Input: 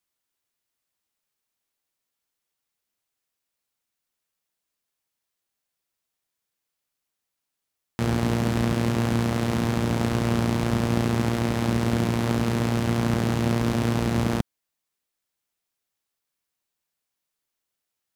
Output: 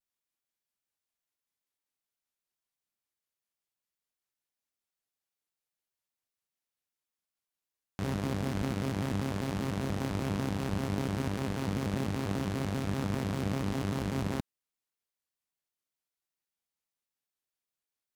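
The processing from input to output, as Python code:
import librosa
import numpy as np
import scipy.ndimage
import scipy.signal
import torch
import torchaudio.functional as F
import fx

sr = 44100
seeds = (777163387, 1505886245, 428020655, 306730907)

y = fx.vibrato_shape(x, sr, shape='square', rate_hz=5.1, depth_cents=250.0)
y = F.gain(torch.from_numpy(y), -9.0).numpy()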